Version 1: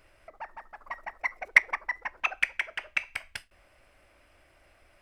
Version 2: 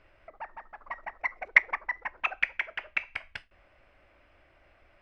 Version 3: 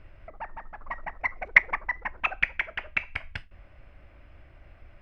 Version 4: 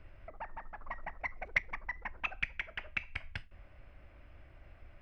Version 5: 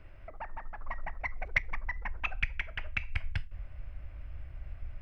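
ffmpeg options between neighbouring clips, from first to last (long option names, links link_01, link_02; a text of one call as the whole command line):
ffmpeg -i in.wav -af "lowpass=3200" out.wav
ffmpeg -i in.wav -af "bass=frequency=250:gain=13,treble=frequency=4000:gain=-3,volume=2.5dB" out.wav
ffmpeg -i in.wav -filter_complex "[0:a]acrossover=split=250|3000[link_01][link_02][link_03];[link_02]acompressor=threshold=-36dB:ratio=3[link_04];[link_01][link_04][link_03]amix=inputs=3:normalize=0,volume=-4dB" out.wav
ffmpeg -i in.wav -af "asubboost=boost=4.5:cutoff=140,volume=2dB" out.wav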